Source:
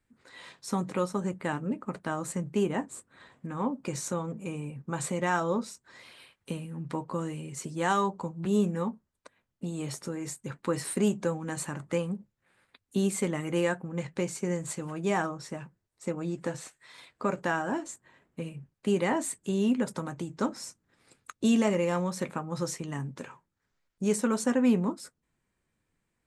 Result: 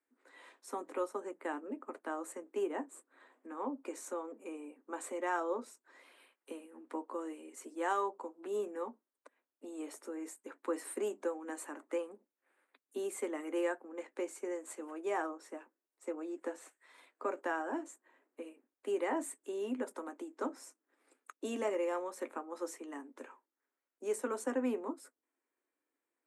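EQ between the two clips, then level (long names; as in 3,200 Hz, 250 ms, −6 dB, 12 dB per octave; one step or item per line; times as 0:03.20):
Butterworth high-pass 260 Hz 72 dB per octave
parametric band 4,600 Hz −11.5 dB 1.5 octaves
−5.5 dB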